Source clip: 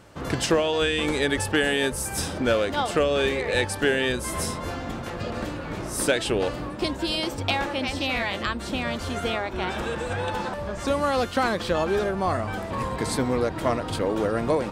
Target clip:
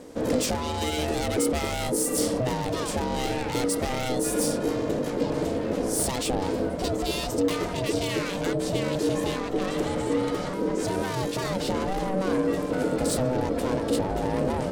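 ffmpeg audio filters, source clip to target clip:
ffmpeg -i in.wav -af "asoftclip=type=tanh:threshold=-26.5dB,bass=frequency=250:gain=15,treble=frequency=4000:gain=9,aeval=exprs='val(0)*sin(2*PI*380*n/s)':channel_layout=same" out.wav

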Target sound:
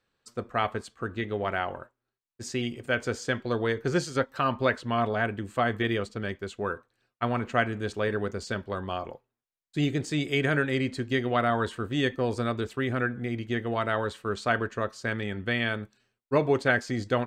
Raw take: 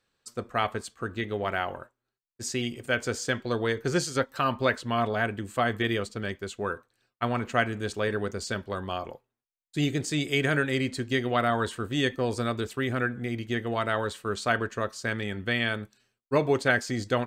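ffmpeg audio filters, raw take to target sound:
ffmpeg -i in.wav -af "aemphasis=mode=reproduction:type=cd" out.wav

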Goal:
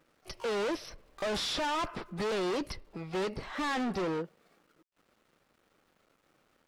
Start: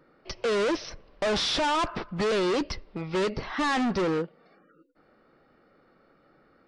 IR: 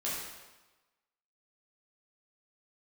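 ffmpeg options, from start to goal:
-filter_complex "[0:a]aeval=exprs='val(0)*gte(abs(val(0)),0.00119)':channel_layout=same,asplit=2[link_01][link_02];[link_02]asetrate=88200,aresample=44100,atempo=0.5,volume=-14dB[link_03];[link_01][link_03]amix=inputs=2:normalize=0,volume=-6.5dB"

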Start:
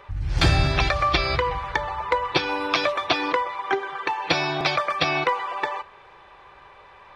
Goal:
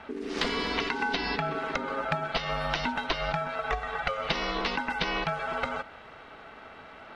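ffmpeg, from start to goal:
ffmpeg -i in.wav -filter_complex "[0:a]acrossover=split=390|5600[link_01][link_02][link_03];[link_01]acompressor=threshold=-37dB:ratio=4[link_04];[link_02]acompressor=threshold=-30dB:ratio=4[link_05];[link_03]acompressor=threshold=-56dB:ratio=4[link_06];[link_04][link_05][link_06]amix=inputs=3:normalize=0,aeval=exprs='val(0)*sin(2*PI*340*n/s)':channel_layout=same,volume=4dB" out.wav

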